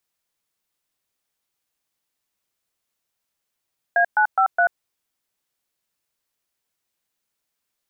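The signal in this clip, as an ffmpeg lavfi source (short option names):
-f lavfi -i "aevalsrc='0.15*clip(min(mod(t,0.208),0.087-mod(t,0.208))/0.002,0,1)*(eq(floor(t/0.208),0)*(sin(2*PI*697*mod(t,0.208))+sin(2*PI*1633*mod(t,0.208)))+eq(floor(t/0.208),1)*(sin(2*PI*852*mod(t,0.208))+sin(2*PI*1477*mod(t,0.208)))+eq(floor(t/0.208),2)*(sin(2*PI*770*mod(t,0.208))+sin(2*PI*1336*mod(t,0.208)))+eq(floor(t/0.208),3)*(sin(2*PI*697*mod(t,0.208))+sin(2*PI*1477*mod(t,0.208))))':d=0.832:s=44100"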